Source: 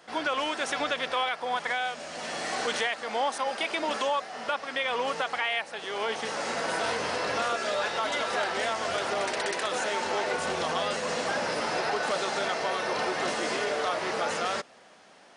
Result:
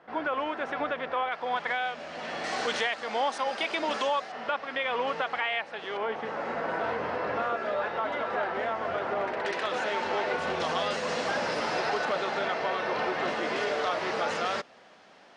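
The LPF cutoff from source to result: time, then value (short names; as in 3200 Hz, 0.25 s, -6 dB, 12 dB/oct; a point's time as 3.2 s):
1700 Hz
from 1.32 s 3300 Hz
from 2.44 s 5900 Hz
from 4.32 s 3100 Hz
from 5.97 s 1700 Hz
from 9.45 s 3500 Hz
from 10.6 s 5700 Hz
from 12.05 s 3200 Hz
from 13.56 s 5000 Hz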